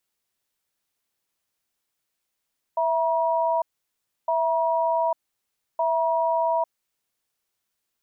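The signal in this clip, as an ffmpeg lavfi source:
-f lavfi -i "aevalsrc='0.075*(sin(2*PI*659*t)+sin(2*PI*956*t))*clip(min(mod(t,1.51),0.85-mod(t,1.51))/0.005,0,1)':d=3.87:s=44100"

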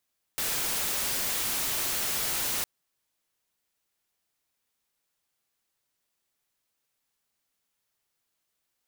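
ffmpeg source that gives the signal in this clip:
-f lavfi -i "anoisesrc=c=white:a=0.058:d=2.26:r=44100:seed=1"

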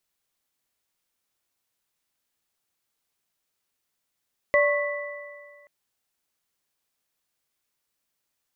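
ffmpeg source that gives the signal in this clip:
-f lavfi -i "aevalsrc='0.141*pow(10,-3*t/1.83)*sin(2*PI*582*t)+0.0501*pow(10,-3*t/1.78)*sin(2*PI*1100*t)+0.106*pow(10,-3*t/1.91)*sin(2*PI*1980*t)':d=1.13:s=44100"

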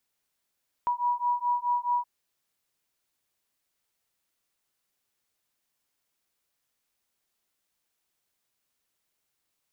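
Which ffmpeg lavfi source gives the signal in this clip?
-f lavfi -i "aevalsrc='0.0422*(sin(2*PI*968*t)+sin(2*PI*972.7*t))':d=1.17:s=44100"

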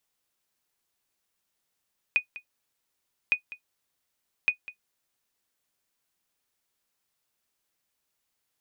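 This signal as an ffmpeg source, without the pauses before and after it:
-f lavfi -i "aevalsrc='0.224*(sin(2*PI*2480*mod(t,1.16))*exp(-6.91*mod(t,1.16)/0.1)+0.133*sin(2*PI*2480*max(mod(t,1.16)-0.2,0))*exp(-6.91*max(mod(t,1.16)-0.2,0)/0.1))':d=3.48:s=44100"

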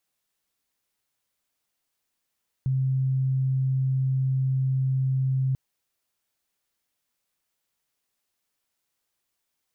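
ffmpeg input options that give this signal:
-f lavfi -i "sine=f=132:d=2.89:r=44100,volume=-2.94dB"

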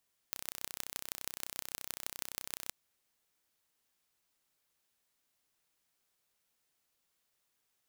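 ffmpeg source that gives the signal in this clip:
-f lavfi -i "aevalsrc='0.376*eq(mod(n,1391),0)*(0.5+0.5*eq(mod(n,6955),0))':d=2.39:s=44100"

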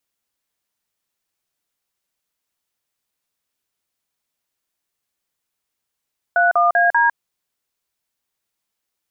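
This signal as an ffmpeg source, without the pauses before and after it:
-f lavfi -i "aevalsrc='0.188*clip(min(mod(t,0.195),0.153-mod(t,0.195))/0.002,0,1)*(eq(floor(t/0.195),0)*(sin(2*PI*697*mod(t,0.195))+sin(2*PI*1477*mod(t,0.195)))+eq(floor(t/0.195),1)*(sin(2*PI*697*mod(t,0.195))+sin(2*PI*1209*mod(t,0.195)))+eq(floor(t/0.195),2)*(sin(2*PI*697*mod(t,0.195))+sin(2*PI*1633*mod(t,0.195)))+eq(floor(t/0.195),3)*(sin(2*PI*941*mod(t,0.195))+sin(2*PI*1633*mod(t,0.195))))':d=0.78:s=44100"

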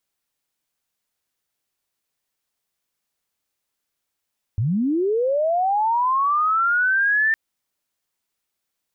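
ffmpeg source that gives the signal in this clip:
-f lavfi -i "aevalsrc='pow(10,(-18+2.5*t/2.76)/20)*sin(2*PI*(94*t+1706*t*t/(2*2.76)))':d=2.76:s=44100"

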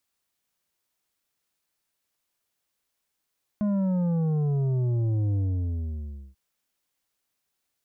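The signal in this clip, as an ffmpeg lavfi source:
-f lavfi -i "aevalsrc='0.0708*clip((2.74-t)/1,0,1)*tanh(2.51*sin(2*PI*210*2.74/log(65/210)*(exp(log(65/210)*t/2.74)-1)))/tanh(2.51)':d=2.74:s=44100"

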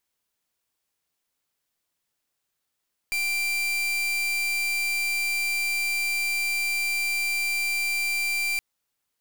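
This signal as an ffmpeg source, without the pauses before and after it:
-f lavfi -i "aevalsrc='0.0501*(2*lt(mod(2360*t,1),0.39)-1)':d=5.47:s=44100"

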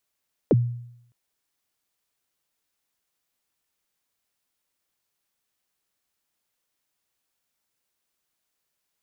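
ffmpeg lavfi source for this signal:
-f lavfi -i "aevalsrc='0.251*pow(10,-3*t/0.74)*sin(2*PI*(570*0.033/log(120/570)*(exp(log(120/570)*min(t,0.033)/0.033)-1)+120*max(t-0.033,0)))':d=0.61:s=44100"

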